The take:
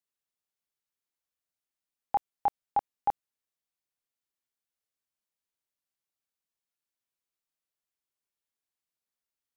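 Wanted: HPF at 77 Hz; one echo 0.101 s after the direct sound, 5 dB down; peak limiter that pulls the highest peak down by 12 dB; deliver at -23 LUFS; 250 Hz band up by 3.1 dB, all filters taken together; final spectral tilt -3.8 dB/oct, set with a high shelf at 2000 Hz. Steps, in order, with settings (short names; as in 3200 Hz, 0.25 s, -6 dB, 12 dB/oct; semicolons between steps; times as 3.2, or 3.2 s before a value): HPF 77 Hz; bell 250 Hz +4 dB; high shelf 2000 Hz +4.5 dB; limiter -29 dBFS; echo 0.101 s -5 dB; gain +19.5 dB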